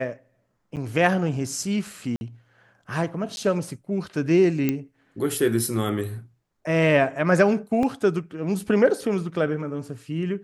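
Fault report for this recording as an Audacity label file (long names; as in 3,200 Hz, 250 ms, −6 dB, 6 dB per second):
0.760000	0.770000	drop-out 8.4 ms
2.160000	2.210000	drop-out 51 ms
3.360000	3.370000	drop-out
4.690000	4.690000	click −10 dBFS
7.830000	7.830000	drop-out 2.4 ms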